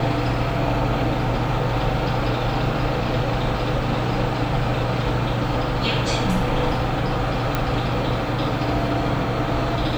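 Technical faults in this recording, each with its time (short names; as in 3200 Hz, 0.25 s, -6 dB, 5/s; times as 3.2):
7.55 pop -8 dBFS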